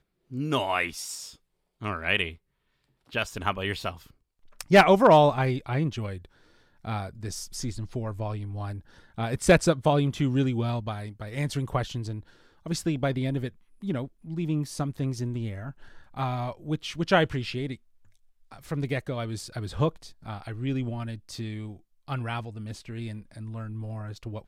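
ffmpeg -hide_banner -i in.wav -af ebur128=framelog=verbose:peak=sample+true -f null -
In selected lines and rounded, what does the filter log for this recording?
Integrated loudness:
  I:         -27.8 LUFS
  Threshold: -38.5 LUFS
Loudness range:
  LRA:        11.5 LU
  Threshold: -48.4 LUFS
  LRA low:   -34.7 LUFS
  LRA high:  -23.2 LUFS
Sample peak:
  Peak:       -7.5 dBFS
True peak:
  Peak:       -7.4 dBFS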